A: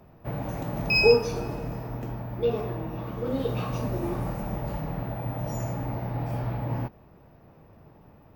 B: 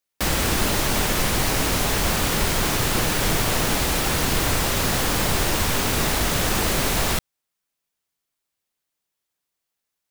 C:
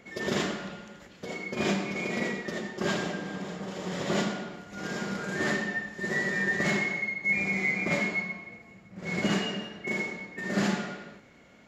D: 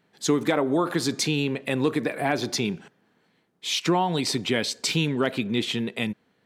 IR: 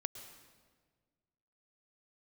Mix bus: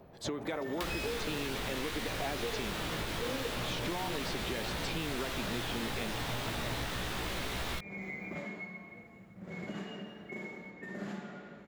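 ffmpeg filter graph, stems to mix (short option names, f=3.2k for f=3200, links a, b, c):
-filter_complex "[0:a]volume=-6.5dB[a];[1:a]flanger=delay=16:depth=2.1:speed=0.29,adelay=600,volume=0.5dB[b];[2:a]equalizer=f=5k:t=o:w=2.1:g=-11,acompressor=threshold=-44dB:ratio=2,adelay=450,volume=-1.5dB[c];[3:a]volume=-5dB[d];[a][d]amix=inputs=2:normalize=0,equalizer=f=490:t=o:w=2:g=8,alimiter=limit=-19dB:level=0:latency=1:release=432,volume=0dB[e];[b][c]amix=inputs=2:normalize=0,equalizer=f=3.6k:w=3.2:g=4,acompressor=threshold=-30dB:ratio=3,volume=0dB[f];[e][f]amix=inputs=2:normalize=0,acrossover=split=1100|4100[g][h][i];[g]acompressor=threshold=-36dB:ratio=4[j];[h]acompressor=threshold=-39dB:ratio=4[k];[i]acompressor=threshold=-50dB:ratio=4[l];[j][k][l]amix=inputs=3:normalize=0"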